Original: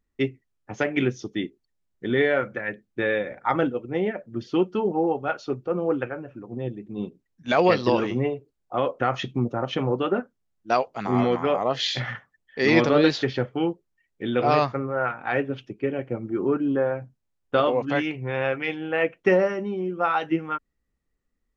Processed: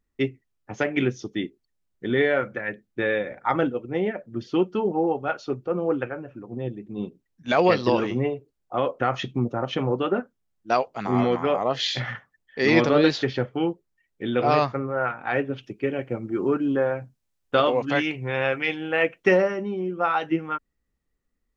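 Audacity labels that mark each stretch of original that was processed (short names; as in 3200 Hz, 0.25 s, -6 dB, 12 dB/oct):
15.630000	19.420000	high shelf 2100 Hz +6.5 dB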